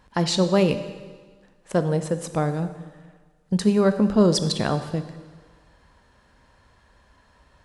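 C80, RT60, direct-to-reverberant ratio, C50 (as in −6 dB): 12.5 dB, 1.5 s, 9.5 dB, 11.0 dB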